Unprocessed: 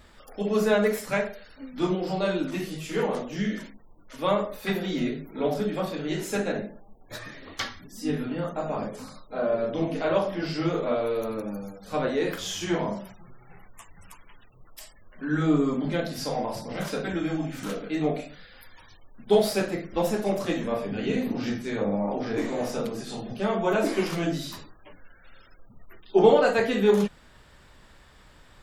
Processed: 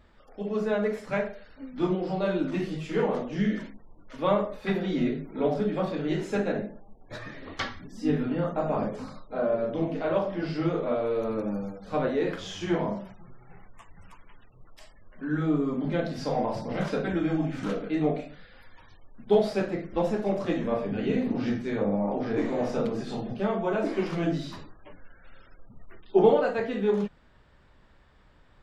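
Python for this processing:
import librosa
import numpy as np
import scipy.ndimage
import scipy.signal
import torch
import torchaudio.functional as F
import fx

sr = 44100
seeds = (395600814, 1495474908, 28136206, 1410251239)

y = fx.high_shelf(x, sr, hz=6100.0, db=5.0)
y = fx.rider(y, sr, range_db=4, speed_s=0.5)
y = fx.spacing_loss(y, sr, db_at_10k=23)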